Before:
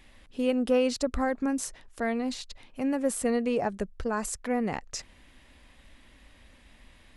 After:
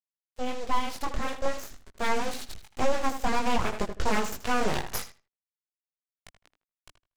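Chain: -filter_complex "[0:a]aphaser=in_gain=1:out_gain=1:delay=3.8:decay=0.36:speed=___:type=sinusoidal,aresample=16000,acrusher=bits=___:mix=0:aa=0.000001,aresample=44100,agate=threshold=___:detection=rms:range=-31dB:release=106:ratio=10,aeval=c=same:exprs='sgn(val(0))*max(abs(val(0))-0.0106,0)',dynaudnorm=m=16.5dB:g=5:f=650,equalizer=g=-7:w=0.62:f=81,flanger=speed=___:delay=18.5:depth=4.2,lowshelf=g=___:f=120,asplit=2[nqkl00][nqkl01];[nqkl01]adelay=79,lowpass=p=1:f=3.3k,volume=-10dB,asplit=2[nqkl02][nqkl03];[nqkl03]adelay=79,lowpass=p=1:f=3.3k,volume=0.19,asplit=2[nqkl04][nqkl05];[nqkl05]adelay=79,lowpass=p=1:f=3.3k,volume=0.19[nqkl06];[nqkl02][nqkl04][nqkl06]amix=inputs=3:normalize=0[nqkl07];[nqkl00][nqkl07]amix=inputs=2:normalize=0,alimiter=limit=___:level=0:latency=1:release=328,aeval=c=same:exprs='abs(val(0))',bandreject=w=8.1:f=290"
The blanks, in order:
1.4, 6, -48dB, 0.46, 8, -13dB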